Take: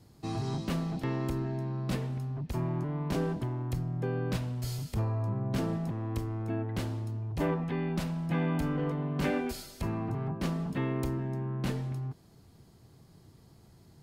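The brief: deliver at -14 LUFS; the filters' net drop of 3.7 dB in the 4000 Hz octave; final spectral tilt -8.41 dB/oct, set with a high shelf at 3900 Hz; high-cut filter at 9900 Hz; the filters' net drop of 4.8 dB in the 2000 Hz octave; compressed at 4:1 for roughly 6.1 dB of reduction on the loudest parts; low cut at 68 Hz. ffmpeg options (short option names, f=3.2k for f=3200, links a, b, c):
-af "highpass=68,lowpass=9.9k,equalizer=f=2k:t=o:g=-6,highshelf=f=3.9k:g=3.5,equalizer=f=4k:t=o:g=-5,acompressor=threshold=-34dB:ratio=4,volume=24dB"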